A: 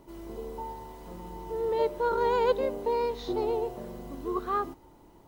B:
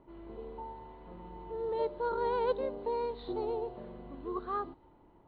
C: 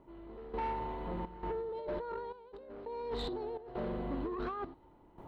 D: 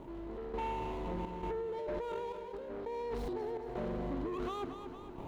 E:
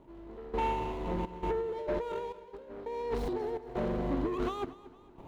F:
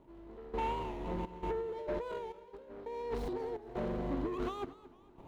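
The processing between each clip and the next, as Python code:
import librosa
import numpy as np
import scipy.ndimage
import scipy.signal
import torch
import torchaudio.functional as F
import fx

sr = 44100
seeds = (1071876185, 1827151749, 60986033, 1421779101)

y1 = fx.env_lowpass(x, sr, base_hz=2100.0, full_db=-22.5)
y1 = scipy.signal.sosfilt(scipy.signal.cheby1(6, 1.0, 4300.0, 'lowpass', fs=sr, output='sos'), y1)
y1 = fx.dynamic_eq(y1, sr, hz=2500.0, q=1.3, threshold_db=-50.0, ratio=4.0, max_db=-5)
y1 = y1 * 10.0 ** (-5.0 / 20.0)
y2 = fx.over_compress(y1, sr, threshold_db=-42.0, ratio=-1.0)
y2 = 10.0 ** (-37.5 / 20.0) * np.tanh(y2 / 10.0 ** (-37.5 / 20.0))
y2 = fx.step_gate(y2, sr, bpm=84, pattern='...xxxx.xxxxx', floor_db=-12.0, edge_ms=4.5)
y2 = y2 * 10.0 ** (6.5 / 20.0)
y3 = scipy.ndimage.median_filter(y2, 25, mode='constant')
y3 = fx.echo_feedback(y3, sr, ms=230, feedback_pct=45, wet_db=-15.5)
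y3 = fx.env_flatten(y3, sr, amount_pct=50)
y3 = y3 * 10.0 ** (-1.0 / 20.0)
y4 = y3 + 10.0 ** (-23.5 / 20.0) * np.pad(y3, (int(318 * sr / 1000.0), 0))[:len(y3)]
y4 = fx.upward_expand(y4, sr, threshold_db=-46.0, expansion=2.5)
y4 = y4 * 10.0 ** (7.5 / 20.0)
y5 = fx.record_warp(y4, sr, rpm=45.0, depth_cents=100.0)
y5 = y5 * 10.0 ** (-4.0 / 20.0)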